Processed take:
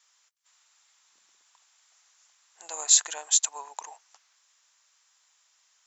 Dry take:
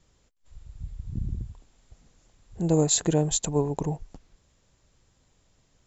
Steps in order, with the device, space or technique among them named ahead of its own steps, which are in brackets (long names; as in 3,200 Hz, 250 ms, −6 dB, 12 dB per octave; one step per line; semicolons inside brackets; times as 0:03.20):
headphones lying on a table (high-pass filter 1,000 Hz 24 dB per octave; parametric band 5,900 Hz +5 dB 0.52 octaves)
level +3 dB